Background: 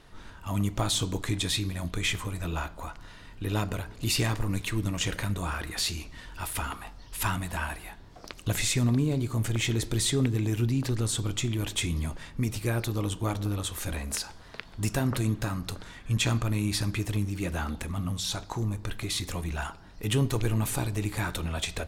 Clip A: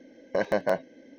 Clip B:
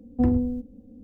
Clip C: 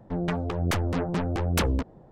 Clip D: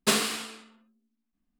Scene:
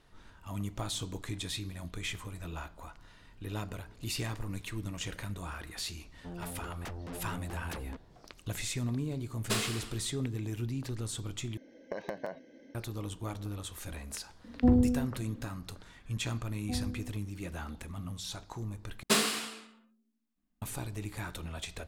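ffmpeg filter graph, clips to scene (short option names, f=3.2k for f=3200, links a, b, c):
-filter_complex "[4:a]asplit=2[a][b];[2:a]asplit=2[c][d];[0:a]volume=-9dB[e];[3:a]asoftclip=type=tanh:threshold=-22.5dB[f];[1:a]acompressor=threshold=-33dB:ratio=10:attack=15:release=126:knee=1:detection=peak[g];[d]aecho=1:1:1.3:0.65[h];[b]acontrast=74[i];[e]asplit=3[j][k][l];[j]atrim=end=11.574[m];[g]atrim=end=1.18,asetpts=PTS-STARTPTS,volume=-4dB[n];[k]atrim=start=12.746:end=19.034[o];[i]atrim=end=1.59,asetpts=PTS-STARTPTS,volume=-9dB[p];[l]atrim=start=20.616[q];[f]atrim=end=2.11,asetpts=PTS-STARTPTS,volume=-13dB,afade=t=in:d=0.004:c=hsin,afade=t=out:st=2.106:d=0.004:c=hsin,adelay=6140[r];[a]atrim=end=1.59,asetpts=PTS-STARTPTS,volume=-8.5dB,afade=t=in:d=0.004:c=hsin,afade=t=out:st=1.586:d=0.004:c=hsin,adelay=9430[s];[c]atrim=end=1.03,asetpts=PTS-STARTPTS,volume=-2dB,afade=t=in:d=0.004:c=hsin,afade=t=out:st=1.026:d=0.004:c=hsin,adelay=636804S[t];[h]atrim=end=1.03,asetpts=PTS-STARTPTS,volume=-15.5dB,afade=t=in:d=0.004:c=hsin,afade=t=out:st=1.026:d=0.004:c=hsin,adelay=16500[u];[m][n]acrossfade=d=0.004:c1=hsin:c2=hsin[v];[v][o]acrossfade=d=0.004:c1=hsin:c2=hsin[w];[w][p]acrossfade=d=0.004:c1=hsin:c2=hsin[x];[x][q]acrossfade=d=0.004:c1=hsin:c2=hsin[y];[y][r][s][t][u]amix=inputs=5:normalize=0"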